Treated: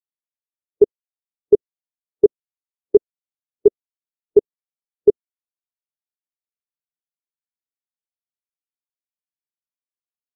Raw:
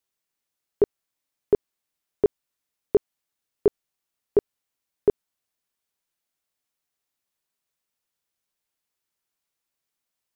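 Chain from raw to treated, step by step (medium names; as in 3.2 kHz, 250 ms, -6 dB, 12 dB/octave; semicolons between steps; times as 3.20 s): median filter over 15 samples; loudness maximiser +16.5 dB; spectral contrast expander 1.5:1; trim -1 dB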